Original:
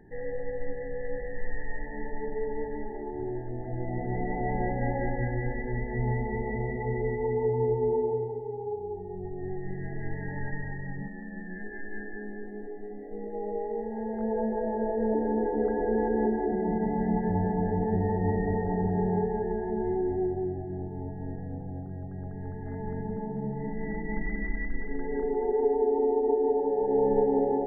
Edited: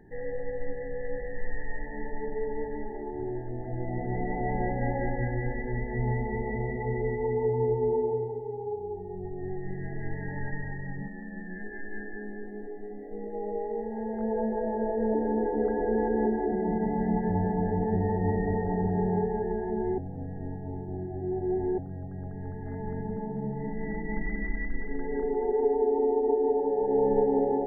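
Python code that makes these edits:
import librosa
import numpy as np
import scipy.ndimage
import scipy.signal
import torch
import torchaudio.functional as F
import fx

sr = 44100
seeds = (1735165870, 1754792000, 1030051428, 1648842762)

y = fx.edit(x, sr, fx.reverse_span(start_s=19.98, length_s=1.8), tone=tone)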